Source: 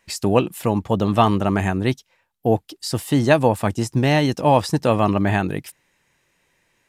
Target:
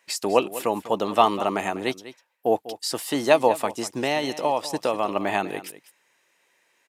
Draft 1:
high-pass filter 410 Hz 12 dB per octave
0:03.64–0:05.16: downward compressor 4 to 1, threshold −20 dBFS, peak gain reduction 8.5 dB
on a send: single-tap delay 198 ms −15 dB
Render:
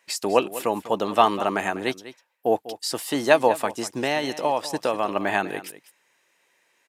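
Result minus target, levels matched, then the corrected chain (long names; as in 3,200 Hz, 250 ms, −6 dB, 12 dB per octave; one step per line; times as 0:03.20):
2,000 Hz band +2.5 dB
high-pass filter 410 Hz 12 dB per octave
dynamic equaliser 1,600 Hz, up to −8 dB, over −43 dBFS, Q 4.9
0:03.64–0:05.16: downward compressor 4 to 1, threshold −20 dBFS, peak gain reduction 8 dB
on a send: single-tap delay 198 ms −15 dB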